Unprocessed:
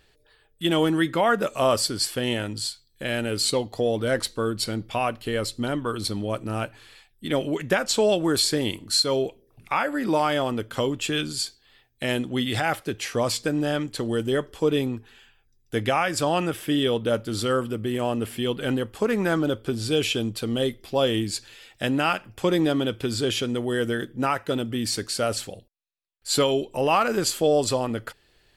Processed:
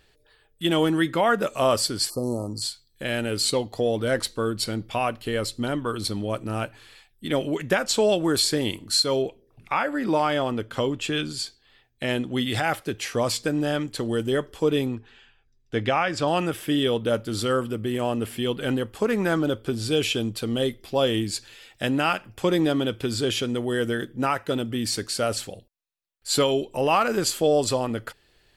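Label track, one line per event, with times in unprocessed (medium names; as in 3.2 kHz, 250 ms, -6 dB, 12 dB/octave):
2.100000	2.620000	spectral selection erased 1.3–4.1 kHz
9.220000	12.300000	treble shelf 7.8 kHz -9 dB
14.950000	16.280000	low-pass 5 kHz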